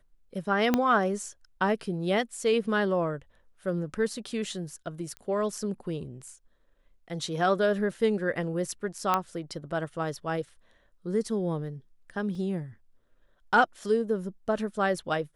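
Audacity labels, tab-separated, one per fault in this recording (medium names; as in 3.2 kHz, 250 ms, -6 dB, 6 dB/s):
0.740000	0.740000	pop -10 dBFS
5.170000	5.170000	pop -26 dBFS
9.140000	9.140000	pop -11 dBFS
12.350000	12.350000	dropout 2.4 ms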